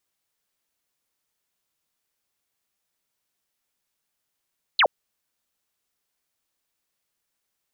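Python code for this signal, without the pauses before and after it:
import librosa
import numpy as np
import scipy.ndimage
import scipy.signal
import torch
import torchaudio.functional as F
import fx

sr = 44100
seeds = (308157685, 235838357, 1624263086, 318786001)

y = fx.laser_zap(sr, level_db=-14.0, start_hz=4500.0, end_hz=480.0, length_s=0.07, wave='sine')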